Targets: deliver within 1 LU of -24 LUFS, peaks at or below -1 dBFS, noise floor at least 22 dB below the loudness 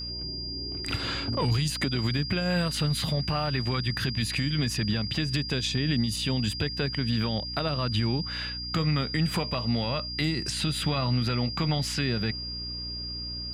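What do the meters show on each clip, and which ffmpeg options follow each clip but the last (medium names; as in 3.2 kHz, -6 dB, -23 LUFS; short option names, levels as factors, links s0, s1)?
hum 60 Hz; highest harmonic 300 Hz; hum level -38 dBFS; steady tone 4.8 kHz; tone level -34 dBFS; loudness -28.0 LUFS; peak level -15.5 dBFS; loudness target -24.0 LUFS
-> -af "bandreject=f=60:t=h:w=6,bandreject=f=120:t=h:w=6,bandreject=f=180:t=h:w=6,bandreject=f=240:t=h:w=6,bandreject=f=300:t=h:w=6"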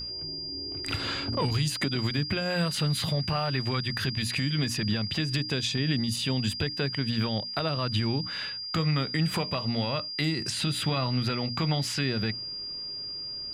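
hum not found; steady tone 4.8 kHz; tone level -34 dBFS
-> -af "bandreject=f=4800:w=30"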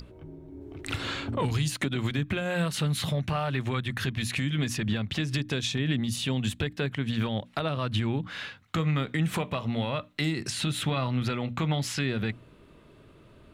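steady tone not found; loudness -29.5 LUFS; peak level -16.0 dBFS; loudness target -24.0 LUFS
-> -af "volume=1.88"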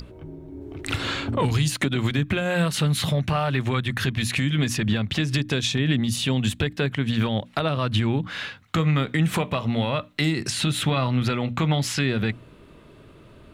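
loudness -24.0 LUFS; peak level -10.5 dBFS; noise floor -49 dBFS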